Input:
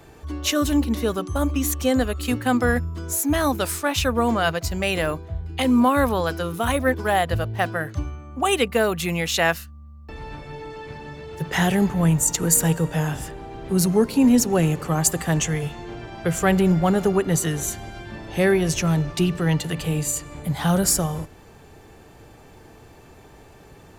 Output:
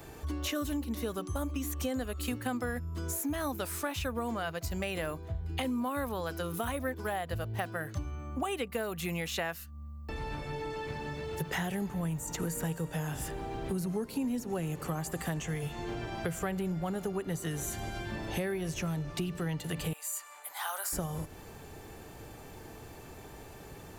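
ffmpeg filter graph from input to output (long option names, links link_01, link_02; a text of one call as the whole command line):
ffmpeg -i in.wav -filter_complex "[0:a]asettb=1/sr,asplit=3[link_01][link_02][link_03];[link_01]atrim=end=19.934[link_04];[link_02]atrim=start=19.93:end=20.93,asetpts=PTS-STARTPTS,afade=type=in:duration=0.004:curve=qsin,afade=type=out:start_time=0.996:duration=0.004:curve=qsin,highpass=frequency=900:width=0.5412,highpass=frequency=900:width=1.3066,equalizer=frequency=4000:width_type=o:width=2.9:gain=-8[link_05];[link_03]atrim=start=20.926[link_06];[link_04][link_05]acrossfade=duration=0.004:curve1=hsin:curve2=qsin[link_07];[link_07][link_06]acrossfade=duration=0.004:curve1=qsin:curve2=hsin,acrossover=split=2800[link_08][link_09];[link_09]acompressor=threshold=-32dB:ratio=4:attack=1:release=60[link_10];[link_08][link_10]amix=inputs=2:normalize=0,highshelf=frequency=10000:gain=10,acompressor=threshold=-31dB:ratio=6,volume=-1dB" out.wav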